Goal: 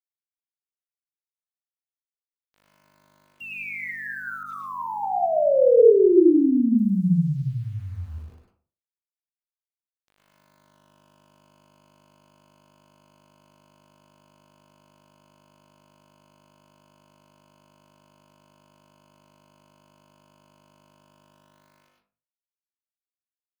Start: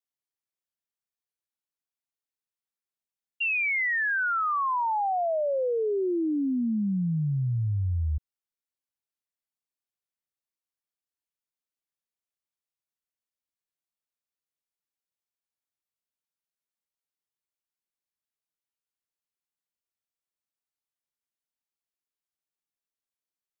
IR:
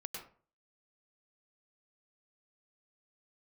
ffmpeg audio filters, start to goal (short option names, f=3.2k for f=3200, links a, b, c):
-filter_complex "[0:a]lowpass=2.5k,lowshelf=f=750:t=q:w=1.5:g=14,bandreject=f=1.2k:w=14,aecho=1:1:76|152|228|304:0.126|0.0579|0.0266|0.0123,aeval=exprs='val(0)+0.0126*(sin(2*PI*50*n/s)+sin(2*PI*2*50*n/s)/2+sin(2*PI*3*50*n/s)/3+sin(2*PI*4*50*n/s)/4+sin(2*PI*5*50*n/s)/5)':c=same,dynaudnorm=f=520:g=7:m=4.5dB,highpass=220,aeval=exprs='val(0)*gte(abs(val(0)),0.0106)':c=same[a];[1:a]atrim=start_sample=2205[b];[a][b]afir=irnorm=-1:irlink=0,asettb=1/sr,asplit=3[c][d][e];[c]atrim=end=4.434[f];[d]atrim=start=4.43:end=6.77,asetpts=PTS-STARTPTS,afade=t=in:d=0.004:c=qsin,afade=t=out:st=2.336:d=0.004:c=qsin,adynamicequalizer=threshold=0.0316:dfrequency=1900:dqfactor=0.7:tfrequency=1900:tqfactor=0.7:attack=5:release=100:ratio=0.375:range=2:mode=cutabove:tftype=highshelf[g];[e]atrim=start=6.766[h];[f][g]acrossfade=d=0.004:c1=hsin:c2=qsin[i];[i][h]acrossfade=d=0.004:c1=qsin:c2=hsin,volume=-5.5dB"